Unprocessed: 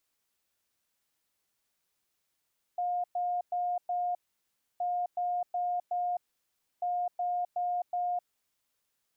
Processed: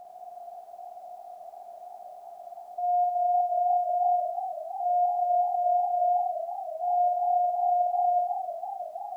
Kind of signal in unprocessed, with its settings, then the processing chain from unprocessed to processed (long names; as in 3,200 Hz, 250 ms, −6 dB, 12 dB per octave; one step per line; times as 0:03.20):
beeps in groups sine 712 Hz, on 0.26 s, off 0.11 s, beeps 4, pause 0.65 s, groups 3, −28 dBFS
compressor on every frequency bin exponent 0.2
on a send: flutter between parallel walls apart 8.9 metres, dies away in 0.92 s
on the sum: feedback echo with a swinging delay time 321 ms, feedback 73%, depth 92 cents, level −11 dB